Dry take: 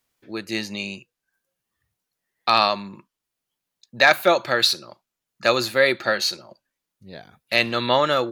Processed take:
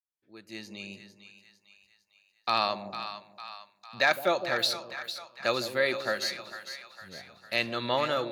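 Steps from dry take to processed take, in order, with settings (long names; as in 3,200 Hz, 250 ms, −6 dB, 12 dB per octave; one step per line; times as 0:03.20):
fade in at the beginning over 1.13 s
on a send: echo with a time of its own for lows and highs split 770 Hz, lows 159 ms, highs 453 ms, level −10 dB
on the sum: level −9 dB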